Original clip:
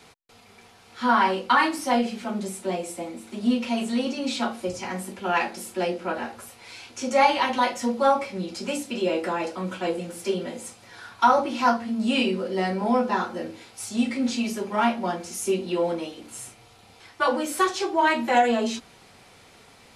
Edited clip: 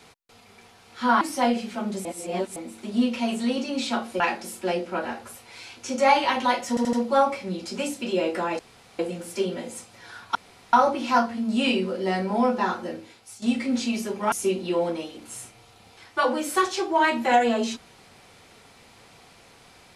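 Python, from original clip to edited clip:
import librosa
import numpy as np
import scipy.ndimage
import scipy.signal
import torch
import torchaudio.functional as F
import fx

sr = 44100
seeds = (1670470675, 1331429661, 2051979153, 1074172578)

y = fx.edit(x, sr, fx.cut(start_s=1.21, length_s=0.49),
    fx.reverse_span(start_s=2.54, length_s=0.51),
    fx.cut(start_s=4.69, length_s=0.64),
    fx.stutter(start_s=7.82, slice_s=0.08, count=4),
    fx.room_tone_fill(start_s=9.48, length_s=0.4),
    fx.insert_room_tone(at_s=11.24, length_s=0.38),
    fx.fade_out_to(start_s=13.31, length_s=0.62, floor_db=-12.0),
    fx.cut(start_s=14.83, length_s=0.52), tone=tone)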